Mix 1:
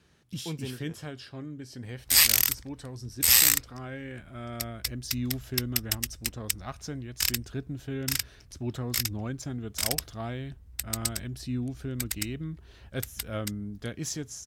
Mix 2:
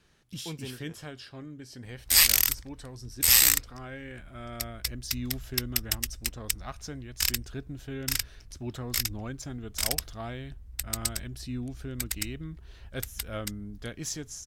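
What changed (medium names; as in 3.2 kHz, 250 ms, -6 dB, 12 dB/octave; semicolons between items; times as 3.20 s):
speech: add bass shelf 450 Hz -4.5 dB; master: remove high-pass 62 Hz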